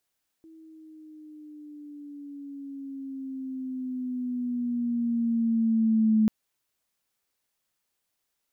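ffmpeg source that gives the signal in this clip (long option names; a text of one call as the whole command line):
ffmpeg -f lavfi -i "aevalsrc='pow(10,(-17.5+30*(t/5.84-1))/20)*sin(2*PI*324*5.84/(-7*log(2)/12)*(exp(-7*log(2)/12*t/5.84)-1))':duration=5.84:sample_rate=44100" out.wav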